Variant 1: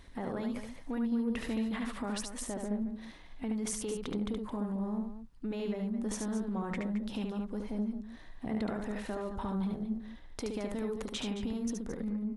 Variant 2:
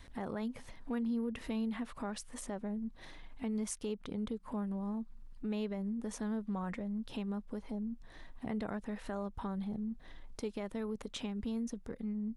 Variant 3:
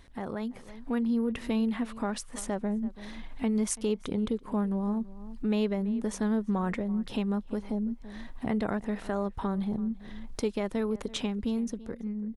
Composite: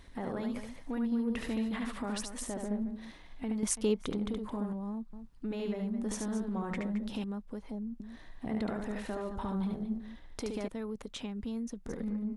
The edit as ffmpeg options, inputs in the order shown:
-filter_complex "[1:a]asplit=3[s0][s1][s2];[0:a]asplit=5[s3][s4][s5][s6][s7];[s3]atrim=end=3.632[s8];[2:a]atrim=start=3.628:end=4.102[s9];[s4]atrim=start=4.098:end=4.732[s10];[s0]atrim=start=4.728:end=5.132[s11];[s5]atrim=start=5.128:end=7.242[s12];[s1]atrim=start=7.238:end=8.002[s13];[s6]atrim=start=7.998:end=10.682[s14];[s2]atrim=start=10.678:end=11.862[s15];[s7]atrim=start=11.858[s16];[s8][s9]acrossfade=d=0.004:c1=hsin:c2=hsin[s17];[s17][s10]acrossfade=d=0.004:c1=hsin:c2=hsin[s18];[s18][s11]acrossfade=d=0.004:c1=hsin:c2=hsin[s19];[s19][s12]acrossfade=d=0.004:c1=hsin:c2=hsin[s20];[s20][s13]acrossfade=d=0.004:c1=hsin:c2=hsin[s21];[s21][s14]acrossfade=d=0.004:c1=hsin:c2=hsin[s22];[s22][s15]acrossfade=d=0.004:c1=hsin:c2=hsin[s23];[s23][s16]acrossfade=d=0.004:c1=hsin:c2=hsin"

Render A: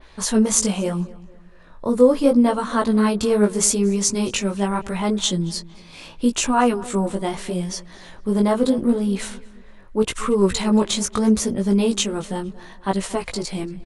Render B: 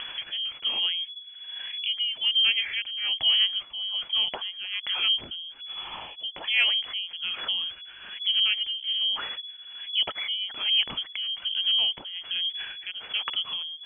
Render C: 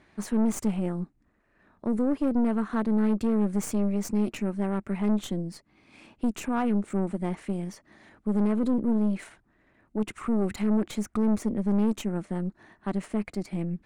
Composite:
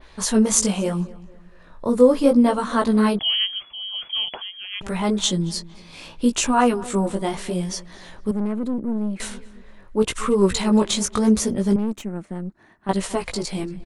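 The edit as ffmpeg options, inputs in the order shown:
-filter_complex "[2:a]asplit=2[s0][s1];[0:a]asplit=4[s2][s3][s4][s5];[s2]atrim=end=3.192[s6];[1:a]atrim=start=3.188:end=4.812[s7];[s3]atrim=start=4.808:end=8.312[s8];[s0]atrim=start=8.308:end=9.202[s9];[s4]atrim=start=9.198:end=11.762[s10];[s1]atrim=start=11.758:end=12.892[s11];[s5]atrim=start=12.888[s12];[s6][s7]acrossfade=d=0.004:c1=hsin:c2=hsin[s13];[s13][s8]acrossfade=d=0.004:c1=hsin:c2=hsin[s14];[s14][s9]acrossfade=d=0.004:c1=hsin:c2=hsin[s15];[s15][s10]acrossfade=d=0.004:c1=hsin:c2=hsin[s16];[s16][s11]acrossfade=d=0.004:c1=hsin:c2=hsin[s17];[s17][s12]acrossfade=d=0.004:c1=hsin:c2=hsin"

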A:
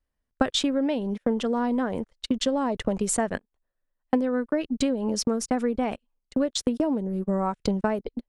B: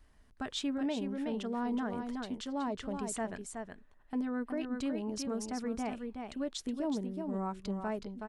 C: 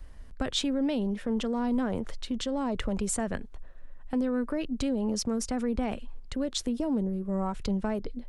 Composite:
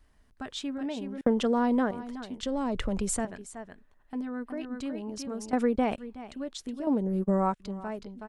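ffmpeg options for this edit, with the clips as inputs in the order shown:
-filter_complex "[0:a]asplit=3[s0][s1][s2];[1:a]asplit=5[s3][s4][s5][s6][s7];[s3]atrim=end=1.212[s8];[s0]atrim=start=1.208:end=1.912[s9];[s4]atrim=start=1.908:end=2.432[s10];[2:a]atrim=start=2.428:end=3.252[s11];[s5]atrim=start=3.248:end=5.532[s12];[s1]atrim=start=5.528:end=5.982[s13];[s6]atrim=start=5.978:end=6.872[s14];[s2]atrim=start=6.868:end=7.602[s15];[s7]atrim=start=7.598[s16];[s8][s9]acrossfade=d=0.004:c1=hsin:c2=hsin[s17];[s17][s10]acrossfade=d=0.004:c1=hsin:c2=hsin[s18];[s18][s11]acrossfade=d=0.004:c1=hsin:c2=hsin[s19];[s19][s12]acrossfade=d=0.004:c1=hsin:c2=hsin[s20];[s20][s13]acrossfade=d=0.004:c1=hsin:c2=hsin[s21];[s21][s14]acrossfade=d=0.004:c1=hsin:c2=hsin[s22];[s22][s15]acrossfade=d=0.004:c1=hsin:c2=hsin[s23];[s23][s16]acrossfade=d=0.004:c1=hsin:c2=hsin"

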